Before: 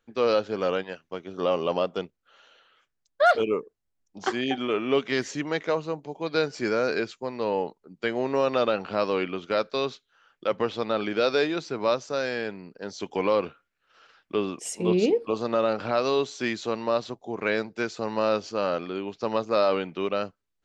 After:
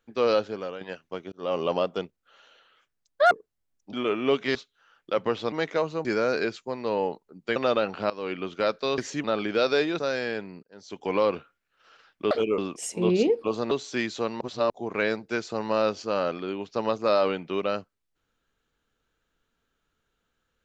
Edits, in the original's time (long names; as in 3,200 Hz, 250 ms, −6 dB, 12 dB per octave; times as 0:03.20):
0:00.43–0:00.81: fade out quadratic, to −11.5 dB
0:01.32–0:01.60: fade in
0:03.31–0:03.58: move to 0:14.41
0:04.20–0:04.57: remove
0:05.19–0:05.45: swap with 0:09.89–0:10.86
0:05.98–0:06.60: remove
0:08.11–0:08.47: remove
0:09.01–0:09.37: fade in, from −18.5 dB
0:11.61–0:12.09: remove
0:12.73–0:13.28: fade in
0:15.54–0:16.18: remove
0:16.88–0:17.17: reverse